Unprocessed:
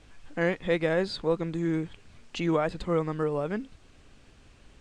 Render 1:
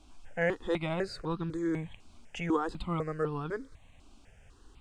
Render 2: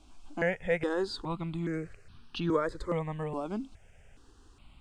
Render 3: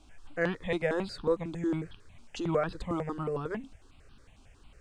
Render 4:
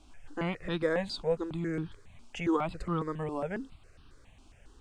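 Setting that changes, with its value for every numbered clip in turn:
step-sequenced phaser, speed: 4, 2.4, 11, 7.3 Hertz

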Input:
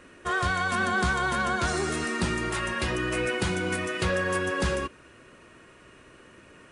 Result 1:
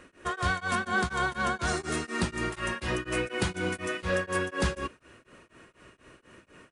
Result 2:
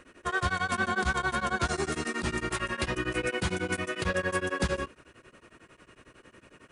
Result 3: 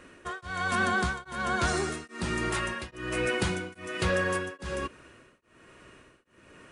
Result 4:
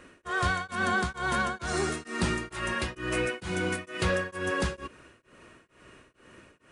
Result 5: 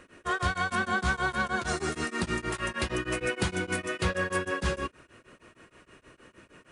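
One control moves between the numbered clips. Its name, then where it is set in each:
tremolo along a rectified sine, nulls at: 4.1, 11, 1.2, 2.2, 6.4 Hertz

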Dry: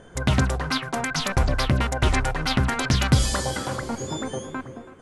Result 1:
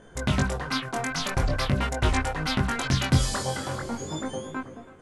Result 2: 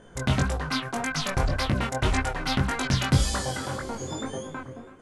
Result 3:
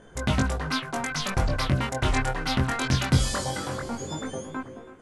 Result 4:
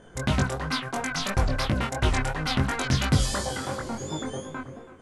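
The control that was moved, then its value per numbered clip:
chorus effect, speed: 0.45, 1.8, 0.2, 2.9 Hertz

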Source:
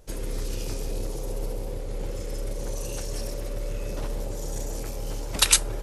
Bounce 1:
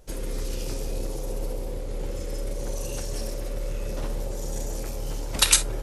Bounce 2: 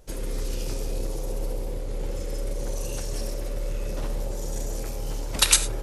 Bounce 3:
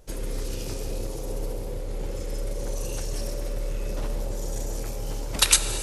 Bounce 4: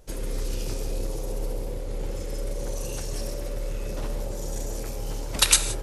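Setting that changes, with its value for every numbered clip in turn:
reverb whose tail is shaped and stops, gate: 80, 130, 360, 200 milliseconds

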